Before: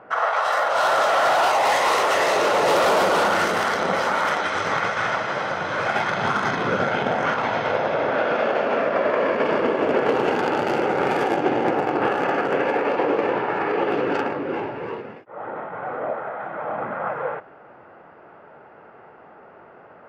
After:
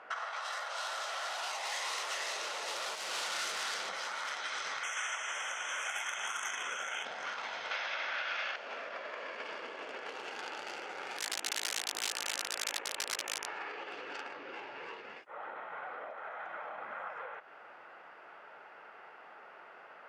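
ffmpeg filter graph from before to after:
-filter_complex "[0:a]asettb=1/sr,asplit=3[a][b][c];[a]atrim=end=2.954[d];[b]atrim=start=2.95:end=3.89,asetpts=PTS-STARTPTS,afade=t=in:d=0.004:c=qsin,afade=t=out:st=0.936:d=0.004:c=qsin,volume=23.5dB,asoftclip=hard,volume=-23.5dB,asplit=2[e][f];[f]adelay=27,volume=-11.5dB[g];[e][g]amix=inputs=2:normalize=0,atrim=end_sample=41454[h];[c]atrim=start=3.886[i];[d][h]acrossfade=d=0.004:c1=hsin:c2=qsin[j];[j][i]acrossfade=d=0.004:c1=qsin:c2=hsin,asettb=1/sr,asplit=3[k][l][m];[k]atrim=end=4.834[n];[l]atrim=start=4.83:end=7.05,asetpts=PTS-STARTPTS,afade=t=in:d=0.004:c=qsin,afade=t=out:st=2.216:d=0.004:c=qsin,asuperstop=centerf=4400:order=8:qfactor=1.8,aemphasis=mode=production:type=riaa[o];[m]atrim=start=7.046[p];[n][o]acrossfade=d=0.004:c1=hsin:c2=qsin[q];[q][p]acrossfade=d=0.004:c1=qsin:c2=hsin,asettb=1/sr,asplit=3[r][s][t];[r]atrim=end=7.714[u];[s]atrim=start=7.71:end=8.56,asetpts=PTS-STARTPTS,afade=t=in:d=0.004:c=qsin,afade=t=out:st=0.846:d=0.004:c=qsin,lowpass=f=6.3k:t=q:w=1.9,equalizer=f=2.2k:t=o:w=2.8:g=14,bandreject=f=450:w=6.5[v];[t]atrim=start=8.556[w];[u][v]acrossfade=d=0.004:c1=hsin:c2=qsin[x];[x][w]acrossfade=d=0.004:c1=qsin:c2=hsin,asettb=1/sr,asplit=3[y][z][aa];[y]atrim=end=11.184[ab];[z]atrim=start=11.18:end=13.46,asetpts=PTS-STARTPTS,afade=t=in:d=0.004:c=qsin,afade=t=out:st=2.276:d=0.004:c=qsin,equalizer=f=4.8k:w=2.5:g=-13.5,aeval=exprs='val(0)*sin(2*PI*27*n/s)':c=same,aeval=exprs='(mod(6.68*val(0)+1,2)-1)/6.68':c=same[ac];[aa]atrim=start=13.456[ad];[ab][ac]acrossfade=d=0.004:c1=hsin:c2=qsin[ae];[ae][ad]acrossfade=d=0.004:c1=qsin:c2=hsin,acompressor=threshold=-34dB:ratio=6,lowpass=6.7k,aderivative,volume=11.5dB"

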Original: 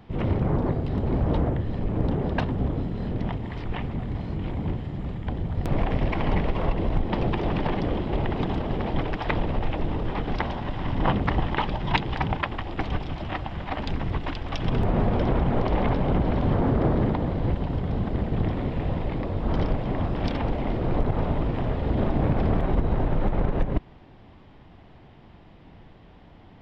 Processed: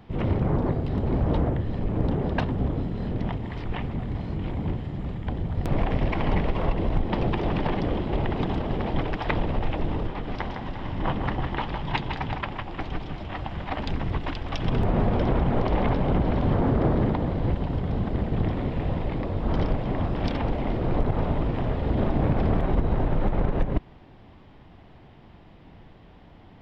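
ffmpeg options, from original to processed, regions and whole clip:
-filter_complex "[0:a]asettb=1/sr,asplit=3[a][b][c];[a]atrim=end=10.074[d];[b]atrim=start=10.07:end=13.37,asetpts=PTS-STARTPTS,afade=t=in:d=0.004:c=qsin,afade=t=out:st=3.296:d=0.004:c=qsin,flanger=delay=4.7:depth=6.9:regen=-63:speed=1.7:shape=triangular,aecho=1:1:158|351:0.447|0.237,atrim=end_sample=145530[e];[c]atrim=start=13.366[f];[d][e]acrossfade=d=0.004:c1=hsin:c2=qsin[g];[g][f]acrossfade=d=0.004:c1=qsin:c2=hsin"

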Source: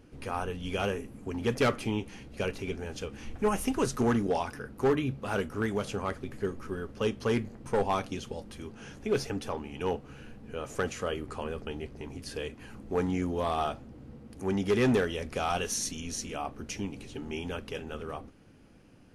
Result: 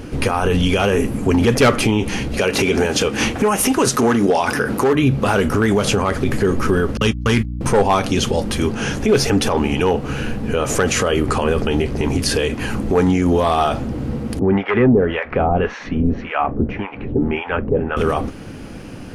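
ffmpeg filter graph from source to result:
-filter_complex "[0:a]asettb=1/sr,asplit=3[a][b][c];[a]atrim=end=2.394[d];[b]atrim=start=2.39:end=4.93,asetpts=PTS-STARTPTS,afade=t=in:d=0.004:c=qsin,afade=t=out:st=2.536:d=0.004:c=qsin,highpass=f=240:p=1,tremolo=f=4.7:d=0.53,acontrast=68[e];[c]atrim=start=4.926[f];[d][e]acrossfade=d=0.004:c1=hsin:c2=qsin[g];[g][f]acrossfade=d=0.004:c1=qsin:c2=hsin,asettb=1/sr,asplit=3[h][i][j];[h]atrim=end=6.974[k];[i]atrim=start=6.97:end=7.61,asetpts=PTS-STARTPTS,afade=t=in:d=0.004:c=qsin,afade=t=out:st=0.636:d=0.004:c=qsin,agate=range=-47dB:threshold=-33dB:ratio=16:release=100:detection=peak,equalizer=f=490:t=o:w=1.8:g=-11.5,aeval=exprs='val(0)+0.00398*(sin(2*PI*60*n/s)+sin(2*PI*2*60*n/s)/2+sin(2*PI*3*60*n/s)/3+sin(2*PI*4*60*n/s)/4+sin(2*PI*5*60*n/s)/5)':c=same[l];[j]atrim=start=7.606[m];[k][l]acrossfade=d=0.004:c1=hsin:c2=qsin[n];[n][m]acrossfade=d=0.004:c1=qsin:c2=hsin,asettb=1/sr,asplit=3[o][p][q];[o]atrim=end=14.394[r];[p]atrim=start=14.39:end=17.97,asetpts=PTS-STARTPTS,afade=t=in:d=0.004:c=qsin,afade=t=out:st=3.576:d=0.004:c=qsin,lowpass=f=2.1k:w=0.5412,lowpass=f=2.1k:w=1.3066,acrossover=split=690[s][t];[s]aeval=exprs='val(0)*(1-1/2+1/2*cos(2*PI*1.8*n/s))':c=same[u];[t]aeval=exprs='val(0)*(1-1/2-1/2*cos(2*PI*1.8*n/s))':c=same[v];[u][v]amix=inputs=2:normalize=0[w];[q]atrim=start=17.966[x];[r][w]acrossfade=d=0.004:c1=hsin:c2=qsin[y];[y][x]acrossfade=d=0.004:c1=qsin:c2=hsin,acompressor=threshold=-30dB:ratio=6,alimiter=level_in=30dB:limit=-1dB:release=50:level=0:latency=1,volume=-6dB"

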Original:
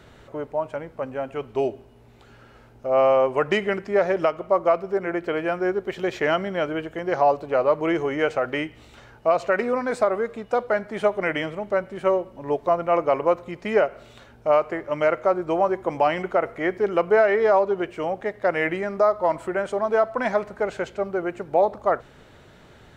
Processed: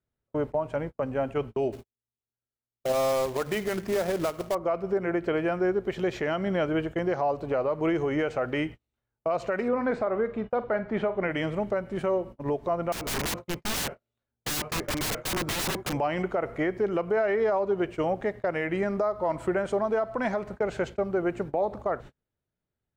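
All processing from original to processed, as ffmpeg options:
-filter_complex "[0:a]asettb=1/sr,asplit=3[a][b][c];[a]atrim=end=1.724[d];[b]atrim=start=1.72:end=4.55,asetpts=PTS-STARTPTS,afade=t=in:d=0.004:c=qsin,afade=t=out:st=2.826:d=0.004:c=qsin,bandreject=f=50:t=h:w=6,bandreject=f=100:t=h:w=6,bandreject=f=150:t=h:w=6,bandreject=f=200:t=h:w=6,bandreject=f=250:t=h:w=6,acrusher=bits=2:mode=log:mix=0:aa=0.000001,agate=range=-12dB:threshold=-48dB:ratio=16:release=100:detection=peak[e];[c]atrim=start=4.546[f];[d][e]acrossfade=d=0.004:c1=hsin:c2=qsin[g];[g][f]acrossfade=d=0.004:c1=qsin:c2=hsin,asettb=1/sr,asplit=3[h][i][j];[h]atrim=end=9.684[k];[i]atrim=start=9.68:end=11.31,asetpts=PTS-STARTPTS,afade=t=in:d=0.004:c=qsin,afade=t=out:st=1.626:d=0.004:c=qsin,lowpass=2.9k,asplit=2[l][m];[m]adelay=46,volume=-14dB[n];[l][n]amix=inputs=2:normalize=0,atrim=end_sample=71883[o];[j]atrim=start=11.306[p];[k][o]acrossfade=d=0.004:c1=hsin:c2=qsin[q];[q][p]acrossfade=d=0.004:c1=qsin:c2=hsin,asettb=1/sr,asplit=3[r][s][t];[r]atrim=end=12.924[u];[s]atrim=start=12.92:end=15.93,asetpts=PTS-STARTPTS,afade=t=in:d=0.004:c=qsin,afade=t=out:st=3.006:d=0.004:c=qsin,bandreject=f=50:t=h:w=6,bandreject=f=100:t=h:w=6,bandreject=f=150:t=h:w=6,bandreject=f=200:t=h:w=6,aeval=exprs='(mod(18.8*val(0)+1,2)-1)/18.8':c=same[v];[t]atrim=start=15.926[w];[u][v]acrossfade=d=0.004:c1=hsin:c2=qsin[x];[x][w]acrossfade=d=0.004:c1=qsin:c2=hsin,agate=range=-42dB:threshold=-36dB:ratio=16:detection=peak,lowshelf=f=280:g=8.5,alimiter=limit=-18dB:level=0:latency=1:release=225"

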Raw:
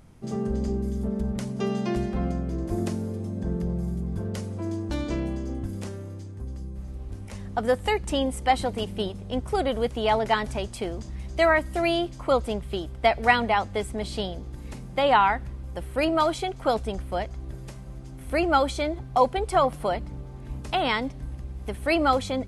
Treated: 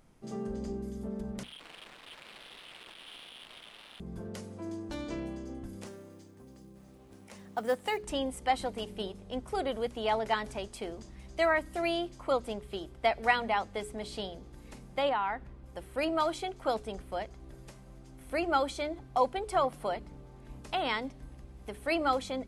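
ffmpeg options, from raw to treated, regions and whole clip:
-filter_complex "[0:a]asettb=1/sr,asplit=3[a][b][c];[a]atrim=end=1.434[d];[b]atrim=start=1.43:end=4,asetpts=PTS-STARTPTS,afade=t=in:d=0.004:c=qsin,afade=t=out:st=2.566:d=0.004:c=qsin,lowpass=f=2.9k:t=q:w=0.5098,lowpass=f=2.9k:t=q:w=0.6013,lowpass=f=2.9k:t=q:w=0.9,lowpass=f=2.9k:t=q:w=2.563,afreqshift=-3400,aeval=exprs='(mod(28.2*val(0)+1,2)-1)/28.2':c=same,adynamicsmooth=sensitivity=6.5:basefreq=690[e];[c]atrim=start=3.996[f];[d][e]acrossfade=d=0.004:c1=hsin:c2=qsin[g];[g][f]acrossfade=d=0.004:c1=qsin:c2=hsin,asettb=1/sr,asplit=3[h][i][j];[h]atrim=end=5.864[k];[i]atrim=start=5.86:end=8.03,asetpts=PTS-STARTPTS,afade=t=in:d=0.004:c=qsin,afade=t=out:st=2.166:d=0.004:c=qsin,highpass=130,acrusher=bits=7:mode=log:mix=0:aa=0.000001[l];[j]atrim=start=8.026[m];[k][l]acrossfade=d=0.004:c1=hsin:c2=qsin[n];[n][m]acrossfade=d=0.004:c1=qsin:c2=hsin,asettb=1/sr,asplit=3[o][p][q];[o]atrim=end=15.094[r];[p]atrim=start=15.09:end=15.66,asetpts=PTS-STARTPTS,afade=t=in:d=0.004:c=qsin,afade=t=out:st=0.566:d=0.004:c=qsin,highshelf=f=4.4k:g=-12,acompressor=threshold=-21dB:ratio=3:attack=3.2:release=140:knee=1:detection=peak[s];[q]atrim=start=15.656[t];[r][s]acrossfade=d=0.004:c1=hsin:c2=qsin[u];[u][t]acrossfade=d=0.004:c1=qsin:c2=hsin,equalizer=f=86:w=0.9:g=-9.5,bandreject=f=60:t=h:w=6,bandreject=f=120:t=h:w=6,bandreject=f=180:t=h:w=6,bandreject=f=240:t=h:w=6,bandreject=f=300:t=h:w=6,bandreject=f=360:t=h:w=6,bandreject=f=420:t=h:w=6,volume=-6.5dB"

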